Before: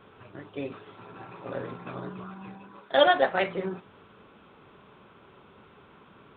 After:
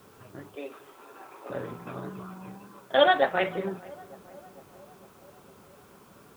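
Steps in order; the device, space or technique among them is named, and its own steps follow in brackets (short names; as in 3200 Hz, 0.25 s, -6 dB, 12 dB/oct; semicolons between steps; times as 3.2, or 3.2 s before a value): 0.55–1.5 Bessel high-pass 430 Hz, order 8; plain cassette with noise reduction switched in (mismatched tape noise reduction decoder only; wow and flutter; white noise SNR 31 dB); darkening echo 0.453 s, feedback 70%, low-pass 1300 Hz, level -20.5 dB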